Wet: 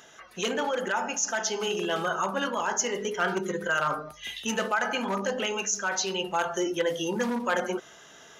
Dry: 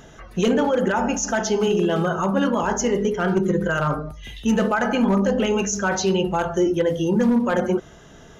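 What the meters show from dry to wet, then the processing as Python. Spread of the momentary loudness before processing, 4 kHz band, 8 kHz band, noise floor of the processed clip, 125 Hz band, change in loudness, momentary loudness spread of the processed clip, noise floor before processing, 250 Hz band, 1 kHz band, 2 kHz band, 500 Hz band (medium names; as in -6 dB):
4 LU, 0.0 dB, no reading, -52 dBFS, -16.0 dB, -7.5 dB, 4 LU, -46 dBFS, -13.5 dB, -4.0 dB, -2.0 dB, -8.5 dB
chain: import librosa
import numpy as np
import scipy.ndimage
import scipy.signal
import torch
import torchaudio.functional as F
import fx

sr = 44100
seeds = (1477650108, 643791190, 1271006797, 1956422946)

y = fx.highpass(x, sr, hz=1400.0, slope=6)
y = fx.rider(y, sr, range_db=4, speed_s=0.5)
y = F.gain(torch.from_numpy(y), 1.0).numpy()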